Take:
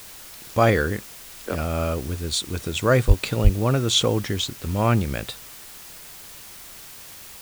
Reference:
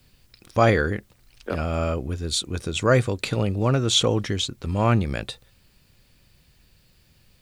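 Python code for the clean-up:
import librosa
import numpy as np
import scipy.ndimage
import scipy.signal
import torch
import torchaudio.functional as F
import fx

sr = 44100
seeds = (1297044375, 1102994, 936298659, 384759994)

y = fx.fix_deplosive(x, sr, at_s=(3.07, 3.43))
y = fx.noise_reduce(y, sr, print_start_s=6.4, print_end_s=6.9, reduce_db=17.0)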